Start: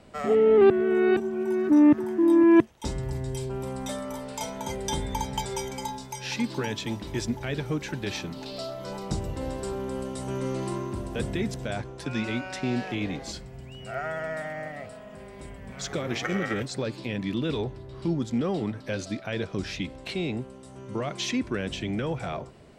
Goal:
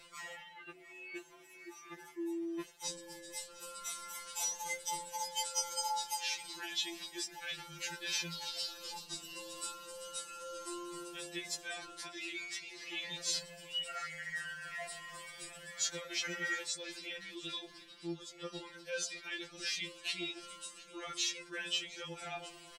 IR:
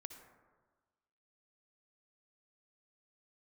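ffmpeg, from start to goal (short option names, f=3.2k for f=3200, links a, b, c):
-af "flanger=delay=7.7:depth=1:regen=-5:speed=0.37:shape=triangular,areverse,acompressor=threshold=-43dB:ratio=4,areverse,tiltshelf=f=1.3k:g=-10,aecho=1:1:708:0.119,afftfilt=real='re*2.83*eq(mod(b,8),0)':imag='im*2.83*eq(mod(b,8),0)':win_size=2048:overlap=0.75,volume=7dB"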